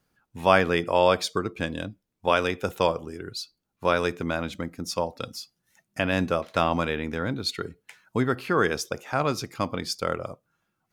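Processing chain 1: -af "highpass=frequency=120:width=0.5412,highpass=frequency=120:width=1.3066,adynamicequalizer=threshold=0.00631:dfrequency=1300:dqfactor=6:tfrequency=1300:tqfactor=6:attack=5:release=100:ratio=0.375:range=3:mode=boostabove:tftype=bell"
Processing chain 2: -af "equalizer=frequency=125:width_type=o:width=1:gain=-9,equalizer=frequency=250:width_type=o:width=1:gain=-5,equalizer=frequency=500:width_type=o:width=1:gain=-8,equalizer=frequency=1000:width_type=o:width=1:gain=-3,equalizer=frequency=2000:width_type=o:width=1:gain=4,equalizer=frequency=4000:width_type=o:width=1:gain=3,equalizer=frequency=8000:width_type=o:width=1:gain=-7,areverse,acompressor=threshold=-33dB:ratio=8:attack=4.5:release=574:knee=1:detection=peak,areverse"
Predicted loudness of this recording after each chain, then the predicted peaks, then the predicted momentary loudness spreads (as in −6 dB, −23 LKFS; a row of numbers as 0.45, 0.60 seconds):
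−26.0, −41.0 LKFS; −3.0, −23.0 dBFS; 15, 6 LU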